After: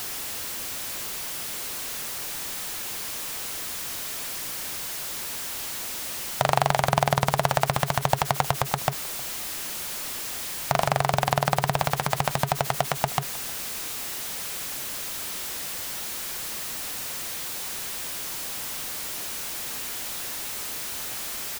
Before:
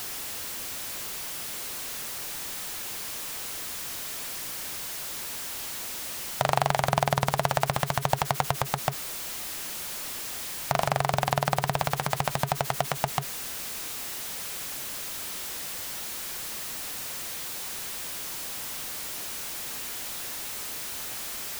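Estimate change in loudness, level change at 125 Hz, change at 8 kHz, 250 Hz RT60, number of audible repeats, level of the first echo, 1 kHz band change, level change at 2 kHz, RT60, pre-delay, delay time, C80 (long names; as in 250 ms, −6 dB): +2.5 dB, +2.5 dB, +2.5 dB, no reverb audible, 1, −22.0 dB, +2.5 dB, +2.5 dB, no reverb audible, no reverb audible, 312 ms, no reverb audible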